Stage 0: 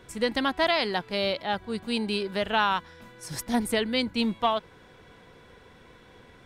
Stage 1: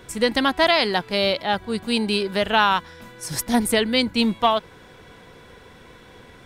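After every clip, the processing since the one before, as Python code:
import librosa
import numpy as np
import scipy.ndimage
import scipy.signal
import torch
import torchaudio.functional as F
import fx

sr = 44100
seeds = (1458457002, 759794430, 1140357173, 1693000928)

y = fx.high_shelf(x, sr, hz=6500.0, db=5.0)
y = y * 10.0 ** (6.0 / 20.0)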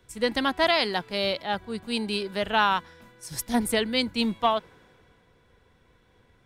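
y = fx.band_widen(x, sr, depth_pct=40)
y = y * 10.0 ** (-5.5 / 20.0)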